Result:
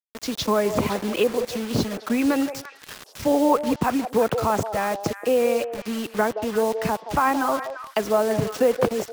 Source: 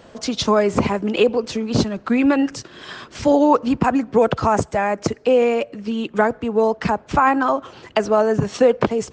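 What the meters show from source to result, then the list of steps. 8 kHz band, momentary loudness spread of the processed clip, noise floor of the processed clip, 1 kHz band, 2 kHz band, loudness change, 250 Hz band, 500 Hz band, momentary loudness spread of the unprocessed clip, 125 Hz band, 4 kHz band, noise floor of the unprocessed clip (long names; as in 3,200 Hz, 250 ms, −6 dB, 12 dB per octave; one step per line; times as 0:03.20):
0.0 dB, 8 LU, −47 dBFS, −4.5 dB, −4.0 dB, −4.5 dB, −5.0 dB, −4.0 dB, 8 LU, −5.0 dB, −3.0 dB, −47 dBFS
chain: bit reduction 5 bits
echo through a band-pass that steps 172 ms, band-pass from 580 Hz, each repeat 1.4 octaves, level −6 dB
level −5 dB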